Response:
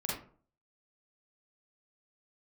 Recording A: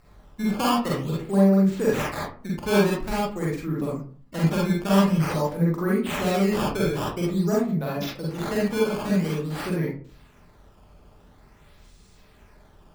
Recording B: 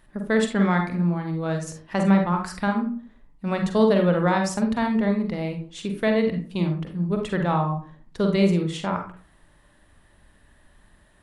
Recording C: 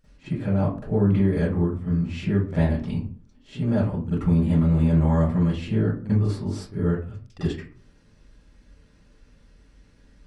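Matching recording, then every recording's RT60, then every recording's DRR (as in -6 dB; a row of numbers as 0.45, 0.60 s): A; 0.45, 0.45, 0.45 s; -5.5, 3.0, -15.0 dB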